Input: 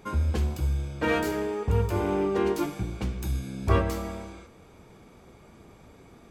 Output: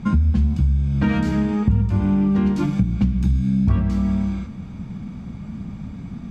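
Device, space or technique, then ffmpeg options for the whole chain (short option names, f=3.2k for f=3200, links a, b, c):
jukebox: -af "lowpass=5.9k,lowshelf=f=290:t=q:w=3:g=11.5,acompressor=threshold=-23dB:ratio=5,volume=7dB"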